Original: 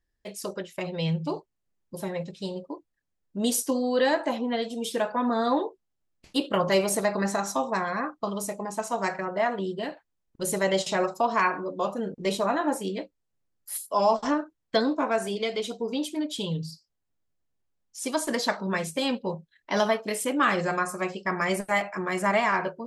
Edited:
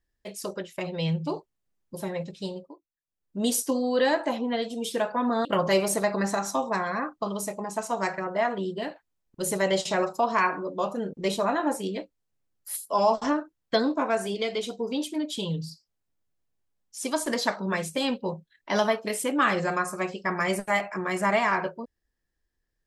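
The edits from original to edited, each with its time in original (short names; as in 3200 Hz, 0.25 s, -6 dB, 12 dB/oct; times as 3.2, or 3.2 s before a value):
2.46–3.39 dip -18 dB, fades 0.34 s
5.45–6.46 cut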